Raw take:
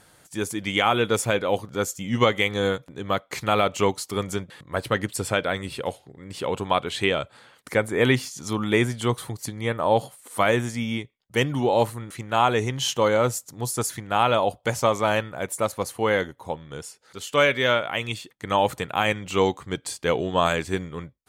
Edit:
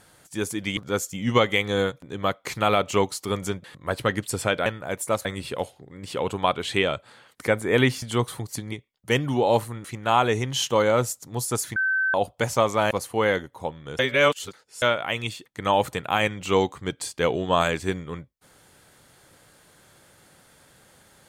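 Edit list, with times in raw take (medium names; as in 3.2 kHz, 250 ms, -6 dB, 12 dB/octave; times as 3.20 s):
0.77–1.63 s: delete
8.29–8.92 s: delete
9.62–10.98 s: delete
14.02–14.40 s: bleep 1.54 kHz -20 dBFS
15.17–15.76 s: move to 5.52 s
16.84–17.67 s: reverse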